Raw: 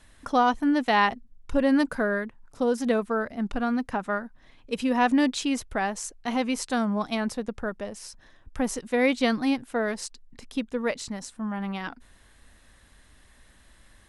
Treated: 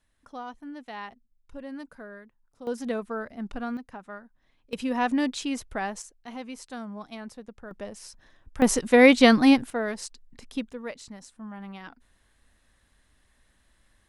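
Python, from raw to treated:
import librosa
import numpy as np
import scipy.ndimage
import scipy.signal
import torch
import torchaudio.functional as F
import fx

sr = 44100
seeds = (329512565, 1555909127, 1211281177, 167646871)

y = fx.gain(x, sr, db=fx.steps((0.0, -17.5), (2.67, -6.0), (3.77, -13.0), (4.73, -3.5), (6.02, -12.0), (7.71, -3.0), (8.62, 7.5), (9.7, -2.0), (10.73, -9.0)))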